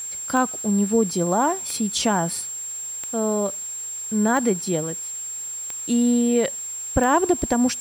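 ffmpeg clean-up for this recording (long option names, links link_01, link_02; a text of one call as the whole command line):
ffmpeg -i in.wav -af "adeclick=threshold=4,bandreject=frequency=7500:width=30,afwtdn=0.0045" out.wav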